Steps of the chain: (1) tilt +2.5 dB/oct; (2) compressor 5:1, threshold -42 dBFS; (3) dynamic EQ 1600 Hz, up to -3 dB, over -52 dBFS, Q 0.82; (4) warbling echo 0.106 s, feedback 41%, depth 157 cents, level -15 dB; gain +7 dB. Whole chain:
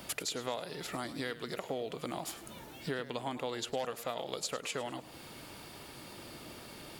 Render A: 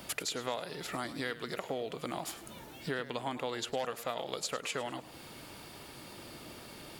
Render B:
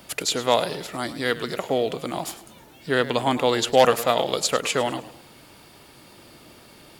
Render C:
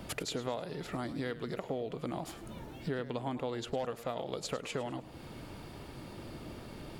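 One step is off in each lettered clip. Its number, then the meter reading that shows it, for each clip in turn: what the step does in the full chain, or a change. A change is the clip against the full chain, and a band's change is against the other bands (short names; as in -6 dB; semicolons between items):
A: 3, 2 kHz band +2.0 dB; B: 2, mean gain reduction 9.0 dB; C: 1, 125 Hz band +7.5 dB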